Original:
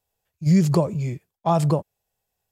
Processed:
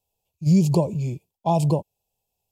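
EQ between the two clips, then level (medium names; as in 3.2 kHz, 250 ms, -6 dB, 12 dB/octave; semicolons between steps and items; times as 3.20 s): Chebyshev band-stop 960–2500 Hz, order 3; 0.0 dB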